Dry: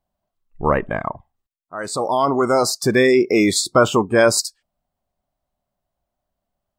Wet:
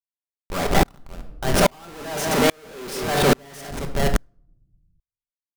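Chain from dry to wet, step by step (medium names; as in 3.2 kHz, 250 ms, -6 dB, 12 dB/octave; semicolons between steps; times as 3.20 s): multi-tap echo 43/85/224/687 ms -16/-18/-11.5/-14.5 dB; tape speed +22%; Schmitt trigger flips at -24 dBFS; simulated room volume 890 m³, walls furnished, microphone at 1.2 m; sawtooth tremolo in dB swelling 1.2 Hz, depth 36 dB; trim +6 dB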